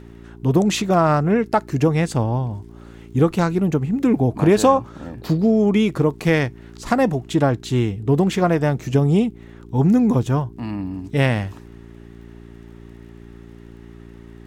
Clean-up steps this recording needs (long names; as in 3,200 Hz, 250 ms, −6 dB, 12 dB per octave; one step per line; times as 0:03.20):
click removal
hum removal 57.5 Hz, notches 7